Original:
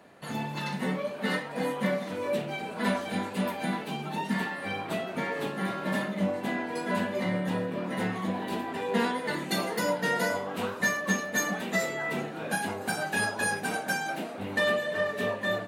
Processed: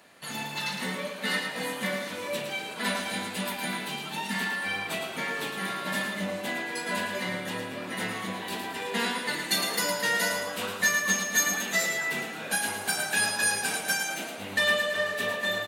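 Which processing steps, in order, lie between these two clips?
tilt shelf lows -7.5 dB, about 1500 Hz; feedback echo 0.111 s, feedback 44%, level -6.5 dB; gain +1 dB

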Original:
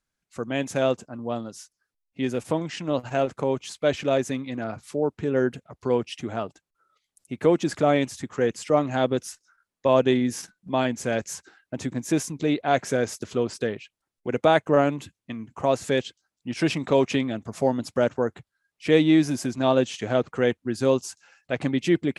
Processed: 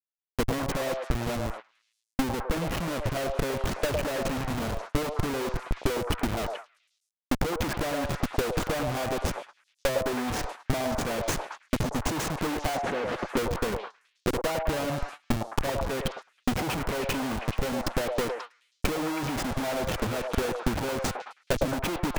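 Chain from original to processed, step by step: Schmitt trigger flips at -31.5 dBFS; 12.77–13.37 three-band isolator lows -13 dB, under 150 Hz, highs -23 dB, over 3600 Hz; transient shaper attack +10 dB, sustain -2 dB; delay with a stepping band-pass 0.107 s, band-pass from 690 Hz, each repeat 0.7 oct, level 0 dB; gate -32 dBFS, range -19 dB; gain -5.5 dB

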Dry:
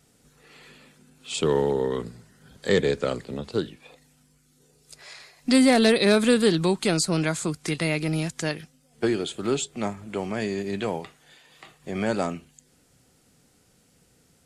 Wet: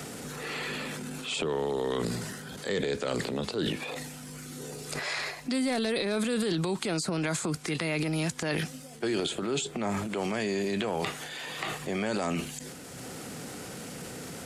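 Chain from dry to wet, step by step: HPF 150 Hz 6 dB/oct; reverse; compressor 5:1, threshold -36 dBFS, peak gain reduction 19 dB; reverse; transient shaper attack -4 dB, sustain +9 dB; three-band squash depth 70%; gain +8 dB

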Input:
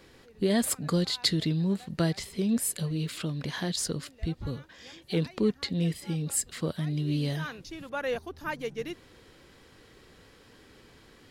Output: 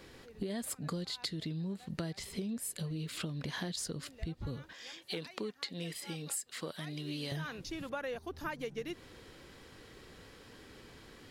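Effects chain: 4.73–7.32 HPF 750 Hz 6 dB/oct; compressor 16:1, threshold -36 dBFS, peak gain reduction 16.5 dB; gain +1 dB

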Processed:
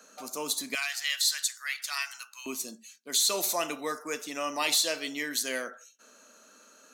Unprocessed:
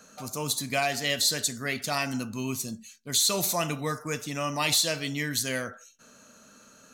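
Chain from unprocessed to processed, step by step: HPF 260 Hz 24 dB/oct, from 0.75 s 1200 Hz, from 2.46 s 280 Hz; gain -1.5 dB

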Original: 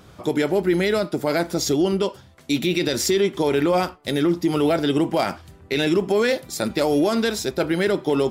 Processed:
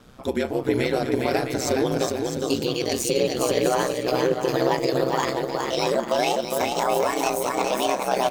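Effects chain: gliding pitch shift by +9.5 st starting unshifted; bouncing-ball echo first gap 0.41 s, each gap 0.6×, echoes 5; ring modulator 64 Hz

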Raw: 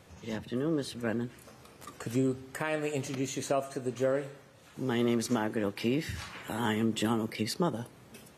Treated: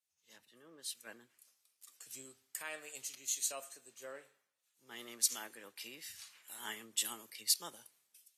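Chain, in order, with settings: differentiator; three-band expander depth 100%

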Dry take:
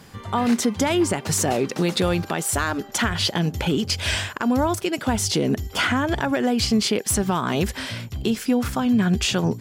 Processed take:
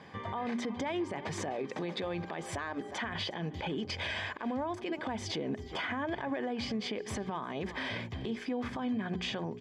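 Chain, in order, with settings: in parallel at -8.5 dB: crossover distortion -40 dBFS; on the sum: LPF 2600 Hz 12 dB/oct; low shelf 340 Hz -5.5 dB; notches 60/120/180/240/300/360/420 Hz; on a send: echo 0.36 s -21.5 dB; on the sum: compressor, threshold -29 dBFS, peak gain reduction 13 dB; notch comb 1400 Hz; limiter -26.5 dBFS, peak gain reduction 10.5 dB

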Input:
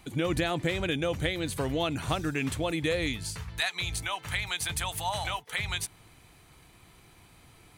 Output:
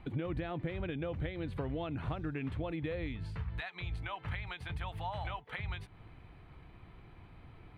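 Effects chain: low shelf 100 Hz +6.5 dB; compressor 4:1, threshold -35 dBFS, peak gain reduction 11 dB; air absorption 460 m; gain +1 dB

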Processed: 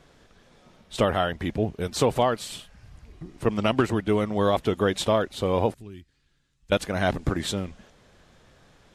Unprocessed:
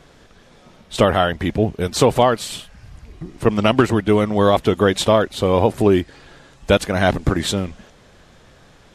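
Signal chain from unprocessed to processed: 5.74–6.72 passive tone stack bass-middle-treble 6-0-2; gain -7.5 dB

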